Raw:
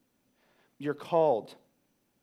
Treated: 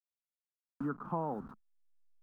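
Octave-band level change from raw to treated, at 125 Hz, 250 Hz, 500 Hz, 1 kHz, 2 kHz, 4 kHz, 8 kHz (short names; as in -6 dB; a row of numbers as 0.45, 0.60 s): 0.0 dB, -1.0 dB, -15.0 dB, -7.0 dB, -6.5 dB, under -25 dB, n/a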